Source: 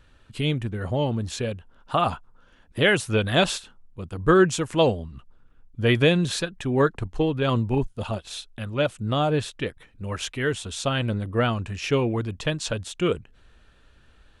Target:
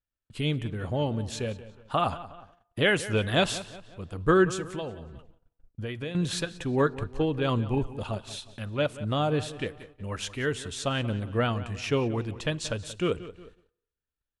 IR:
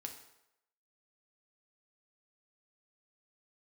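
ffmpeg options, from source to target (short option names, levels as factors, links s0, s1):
-filter_complex "[0:a]asettb=1/sr,asplit=3[s0][s1][s2];[s0]atrim=end=4.494[s3];[s1]atrim=start=4.49:end=6.15,asetpts=PTS-STARTPTS,afade=t=in:d=0.004:c=qsin,afade=t=out:st=1.656:d=0.004:c=qsin,acompressor=threshold=0.0316:ratio=5[s4];[s2]atrim=start=6.146[s5];[s3][s4]acrossfade=d=0.004:c1=hsin:c2=qsin[s6];[s6][s5]acrossfade=d=0.004:c1=qsin:c2=hsin,asplit=2[s7][s8];[s8]adelay=181,lowpass=f=4400:p=1,volume=0.168,asplit=2[s9][s10];[s10]adelay=181,lowpass=f=4400:p=1,volume=0.45,asplit=2[s11][s12];[s12]adelay=181,lowpass=f=4400:p=1,volume=0.45,asplit=2[s13][s14];[s14]adelay=181,lowpass=f=4400:p=1,volume=0.45[s15];[s7][s9][s11][s13][s15]amix=inputs=5:normalize=0,agate=range=0.02:threshold=0.00501:ratio=16:detection=peak,asplit=2[s16][s17];[1:a]atrim=start_sample=2205[s18];[s17][s18]afir=irnorm=-1:irlink=0,volume=0.251[s19];[s16][s19]amix=inputs=2:normalize=0,volume=0.596" -ar 48000 -c:a libmp3lame -b:a 96k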